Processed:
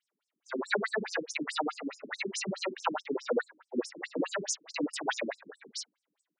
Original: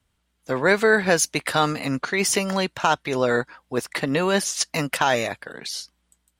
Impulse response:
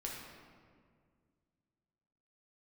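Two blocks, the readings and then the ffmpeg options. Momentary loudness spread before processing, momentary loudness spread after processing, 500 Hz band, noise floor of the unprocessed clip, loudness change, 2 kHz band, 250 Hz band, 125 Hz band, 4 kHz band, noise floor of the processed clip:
12 LU, 9 LU, -12.5 dB, -72 dBFS, -12.5 dB, -12.5 dB, -10.5 dB, -19.5 dB, -11.5 dB, under -85 dBFS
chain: -filter_complex "[1:a]atrim=start_sample=2205,afade=t=out:st=0.13:d=0.01,atrim=end_sample=6174[s0];[0:a][s0]afir=irnorm=-1:irlink=0,afftfilt=real='re*between(b*sr/1024,240*pow(7200/240,0.5+0.5*sin(2*PI*4.7*pts/sr))/1.41,240*pow(7200/240,0.5+0.5*sin(2*PI*4.7*pts/sr))*1.41)':imag='im*between(b*sr/1024,240*pow(7200/240,0.5+0.5*sin(2*PI*4.7*pts/sr))/1.41,240*pow(7200/240,0.5+0.5*sin(2*PI*4.7*pts/sr))*1.41)':win_size=1024:overlap=0.75"

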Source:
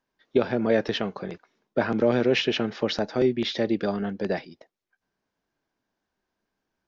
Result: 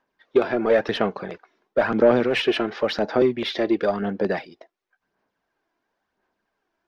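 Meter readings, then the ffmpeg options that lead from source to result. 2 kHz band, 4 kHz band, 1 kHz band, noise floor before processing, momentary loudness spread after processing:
+4.0 dB, +0.5 dB, +5.5 dB, -83 dBFS, 9 LU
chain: -filter_complex "[0:a]asplit=2[s0][s1];[s1]highpass=f=720:p=1,volume=5.01,asoftclip=type=tanh:threshold=0.355[s2];[s0][s2]amix=inputs=2:normalize=0,lowpass=f=1500:p=1,volume=0.501,aphaser=in_gain=1:out_gain=1:delay=3:decay=0.41:speed=0.96:type=sinusoidal"

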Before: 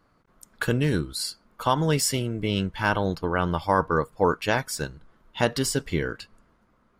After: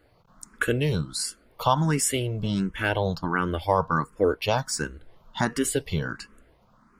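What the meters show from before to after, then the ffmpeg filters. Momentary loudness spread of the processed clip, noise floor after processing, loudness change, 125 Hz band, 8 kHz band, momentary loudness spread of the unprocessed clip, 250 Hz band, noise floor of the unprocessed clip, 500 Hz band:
7 LU, -61 dBFS, -0.5 dB, 0.0 dB, +1.5 dB, 9 LU, -0.5 dB, -65 dBFS, -0.5 dB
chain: -filter_complex "[0:a]asplit=2[s0][s1];[s1]acompressor=threshold=0.0224:ratio=6,volume=1.33[s2];[s0][s2]amix=inputs=2:normalize=0,asplit=2[s3][s4];[s4]afreqshift=1.4[s5];[s3][s5]amix=inputs=2:normalize=1"

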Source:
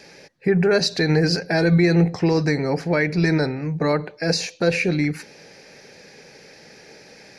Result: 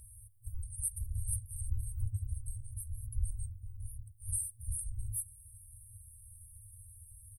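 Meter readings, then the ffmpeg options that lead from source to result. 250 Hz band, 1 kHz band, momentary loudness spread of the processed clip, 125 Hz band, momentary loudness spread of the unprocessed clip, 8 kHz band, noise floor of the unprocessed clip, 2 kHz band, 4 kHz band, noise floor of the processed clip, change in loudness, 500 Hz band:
under -40 dB, under -40 dB, 17 LU, -17.0 dB, 6 LU, -2.5 dB, -47 dBFS, under -40 dB, under -40 dB, -57 dBFS, -19.0 dB, under -40 dB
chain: -af "afftfilt=real='re*(1-between(b*sr/4096,110,8400))':imag='im*(1-between(b*sr/4096,110,8400))':win_size=4096:overlap=0.75,aecho=1:1:2.7:0.65,volume=3.55"

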